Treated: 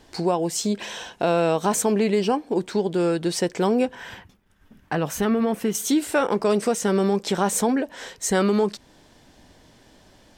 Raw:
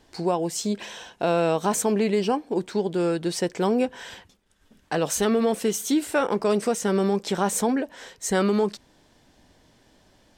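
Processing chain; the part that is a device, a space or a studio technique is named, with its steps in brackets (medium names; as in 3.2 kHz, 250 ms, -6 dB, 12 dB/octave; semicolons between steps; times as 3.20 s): 3.95–5.75 s: ten-band graphic EQ 125 Hz +4 dB, 500 Hz -5 dB, 4 kHz -7 dB, 8 kHz -10 dB; parallel compression (in parallel at -1.5 dB: compression, threshold -32 dBFS, peak gain reduction 13.5 dB)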